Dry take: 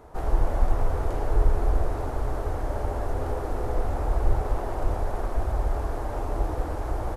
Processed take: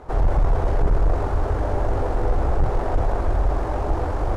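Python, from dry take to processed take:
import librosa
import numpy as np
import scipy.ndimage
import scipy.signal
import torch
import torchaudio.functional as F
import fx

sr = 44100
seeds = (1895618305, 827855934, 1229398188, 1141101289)

p1 = fx.stretch_grains(x, sr, factor=0.61, grain_ms=43.0)
p2 = fx.fold_sine(p1, sr, drive_db=9, ceiling_db=-10.0)
p3 = p1 + (p2 * librosa.db_to_amplitude(-9.0))
y = fx.air_absorb(p3, sr, metres=64.0)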